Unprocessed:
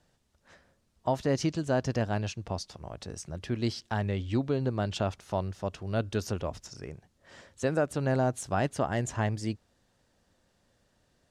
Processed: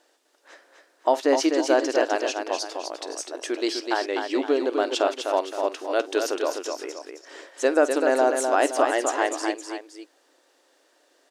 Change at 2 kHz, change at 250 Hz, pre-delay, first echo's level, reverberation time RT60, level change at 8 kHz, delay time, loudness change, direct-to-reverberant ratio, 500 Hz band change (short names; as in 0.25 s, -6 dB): +10.0 dB, +4.5 dB, none, -18.0 dB, none, +10.0 dB, 50 ms, +7.0 dB, none, +10.0 dB